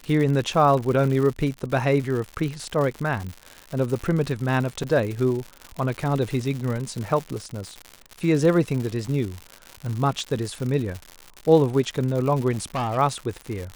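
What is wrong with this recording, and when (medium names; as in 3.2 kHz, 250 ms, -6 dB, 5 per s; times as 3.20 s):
crackle 150 per s -28 dBFS
4.83 s: dropout 4.7 ms
12.51–12.98 s: clipped -22 dBFS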